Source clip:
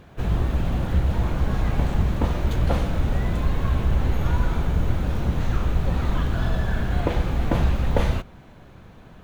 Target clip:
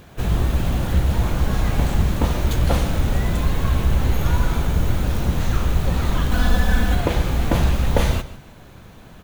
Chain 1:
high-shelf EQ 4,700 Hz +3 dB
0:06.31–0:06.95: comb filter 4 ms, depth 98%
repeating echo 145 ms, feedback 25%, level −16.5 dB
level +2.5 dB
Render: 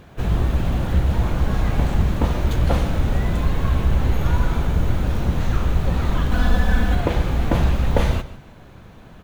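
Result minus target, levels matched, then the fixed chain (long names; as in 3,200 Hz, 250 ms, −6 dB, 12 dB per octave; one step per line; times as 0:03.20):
8,000 Hz band −6.5 dB
high-shelf EQ 4,700 Hz +12.5 dB
0:06.31–0:06.95: comb filter 4 ms, depth 98%
repeating echo 145 ms, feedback 25%, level −16.5 dB
level +2.5 dB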